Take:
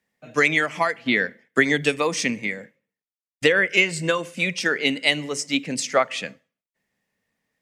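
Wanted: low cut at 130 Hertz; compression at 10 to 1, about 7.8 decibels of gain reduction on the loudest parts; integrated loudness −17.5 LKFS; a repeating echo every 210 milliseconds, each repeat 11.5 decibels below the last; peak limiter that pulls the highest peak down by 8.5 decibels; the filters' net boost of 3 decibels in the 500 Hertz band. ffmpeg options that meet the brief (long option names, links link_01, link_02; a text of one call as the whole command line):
ffmpeg -i in.wav -af "highpass=130,equalizer=frequency=500:width_type=o:gain=3.5,acompressor=threshold=-19dB:ratio=10,alimiter=limit=-15dB:level=0:latency=1,aecho=1:1:210|420|630:0.266|0.0718|0.0194,volume=9.5dB" out.wav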